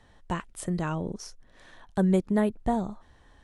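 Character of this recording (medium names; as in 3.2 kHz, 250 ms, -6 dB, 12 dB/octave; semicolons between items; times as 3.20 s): noise floor -58 dBFS; spectral tilt -6.0 dB/octave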